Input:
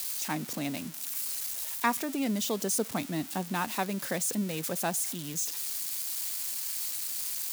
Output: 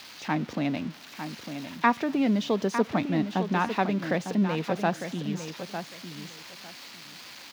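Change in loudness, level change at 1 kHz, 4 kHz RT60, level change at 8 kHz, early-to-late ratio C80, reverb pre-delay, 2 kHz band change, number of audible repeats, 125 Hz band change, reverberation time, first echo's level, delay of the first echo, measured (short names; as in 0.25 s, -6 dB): +2.5 dB, +6.0 dB, none, -15.0 dB, none, none, +4.5 dB, 2, +7.0 dB, none, -9.0 dB, 0.903 s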